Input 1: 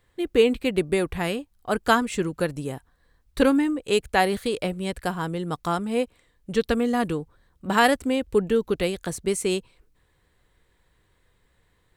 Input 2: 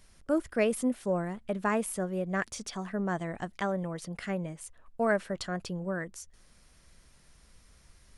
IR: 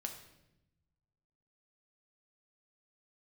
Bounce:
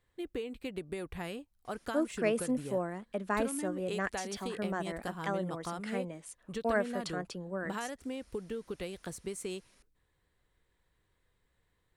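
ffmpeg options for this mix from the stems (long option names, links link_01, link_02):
-filter_complex "[0:a]acompressor=threshold=-24dB:ratio=12,volume=-10.5dB[link_01];[1:a]highpass=frequency=190:width=0.5412,highpass=frequency=190:width=1.3066,adelay=1650,volume=-3dB[link_02];[link_01][link_02]amix=inputs=2:normalize=0"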